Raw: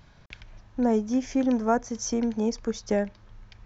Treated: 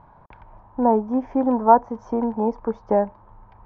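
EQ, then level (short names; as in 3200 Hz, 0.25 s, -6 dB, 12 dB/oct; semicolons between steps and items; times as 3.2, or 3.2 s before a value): synth low-pass 940 Hz, resonance Q 4.9; low shelf 190 Hz -5 dB; +3.5 dB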